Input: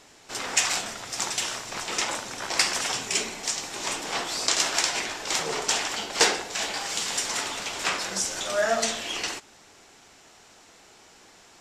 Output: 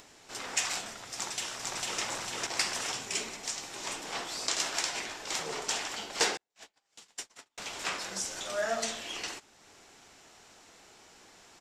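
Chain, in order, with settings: 6.37–7.58 s: gate -25 dBFS, range -46 dB; upward compressor, threshold -42 dBFS; 1.14–2.01 s: echo throw 450 ms, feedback 55%, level -1 dB; trim -7.5 dB

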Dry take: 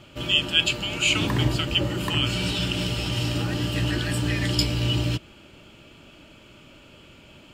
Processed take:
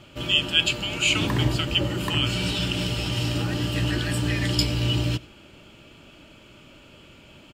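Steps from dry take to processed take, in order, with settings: delay 93 ms -23.5 dB

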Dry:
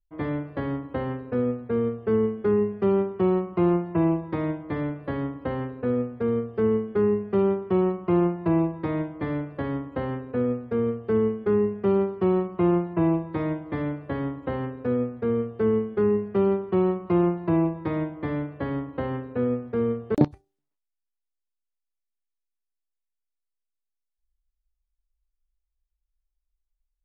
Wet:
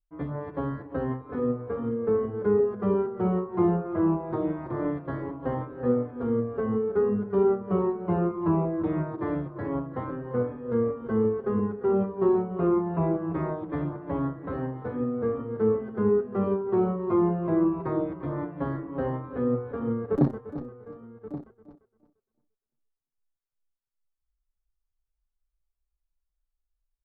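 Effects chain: backward echo that repeats 173 ms, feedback 46%, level -8 dB; resonant high shelf 1.8 kHz -8 dB, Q 1.5; delay 1128 ms -14.5 dB; endless flanger 6.2 ms -2.5 Hz

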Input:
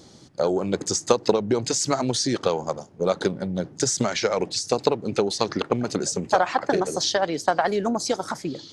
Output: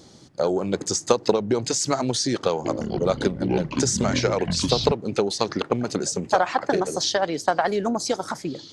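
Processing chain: 2.50–4.92 s: ever faster or slower copies 148 ms, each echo -7 st, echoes 3

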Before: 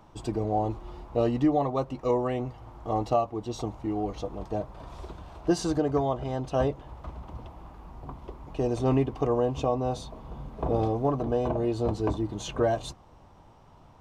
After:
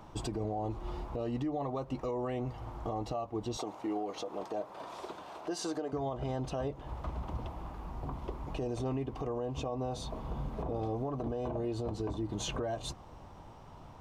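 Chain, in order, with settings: 3.57–5.93 s: high-pass 350 Hz 12 dB/octave; compression 6:1, threshold -33 dBFS, peak gain reduction 13.5 dB; peak limiter -30 dBFS, peak gain reduction 8.5 dB; trim +3 dB

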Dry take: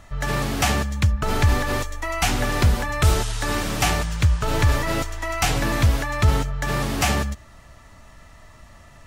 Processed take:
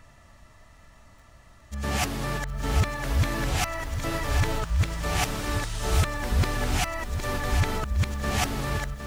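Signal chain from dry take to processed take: reverse the whole clip; bit-crushed delay 761 ms, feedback 35%, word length 7-bit, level -8.5 dB; trim -6 dB

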